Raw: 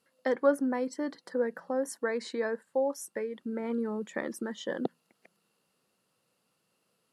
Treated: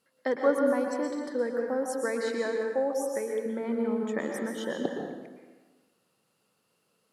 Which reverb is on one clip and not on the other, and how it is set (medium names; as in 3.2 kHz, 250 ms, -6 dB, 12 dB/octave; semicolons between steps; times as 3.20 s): plate-style reverb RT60 1.3 s, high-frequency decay 0.75×, pre-delay 105 ms, DRR 1 dB